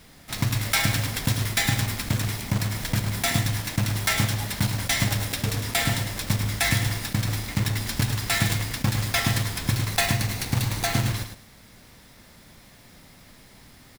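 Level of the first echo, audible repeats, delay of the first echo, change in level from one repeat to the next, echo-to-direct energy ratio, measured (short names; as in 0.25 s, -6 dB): -8.0 dB, 2, 0.105 s, -15.0 dB, -8.0 dB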